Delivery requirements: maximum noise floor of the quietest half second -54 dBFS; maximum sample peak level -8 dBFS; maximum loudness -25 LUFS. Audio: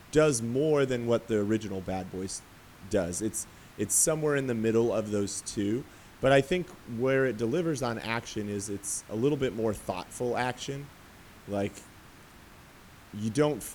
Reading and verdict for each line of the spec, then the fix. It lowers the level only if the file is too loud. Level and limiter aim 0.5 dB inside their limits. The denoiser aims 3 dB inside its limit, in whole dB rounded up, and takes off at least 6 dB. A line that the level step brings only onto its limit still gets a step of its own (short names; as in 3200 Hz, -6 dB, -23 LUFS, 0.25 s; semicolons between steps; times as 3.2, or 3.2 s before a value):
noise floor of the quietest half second -52 dBFS: fail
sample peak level -10.0 dBFS: OK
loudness -29.5 LUFS: OK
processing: denoiser 6 dB, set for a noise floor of -52 dBFS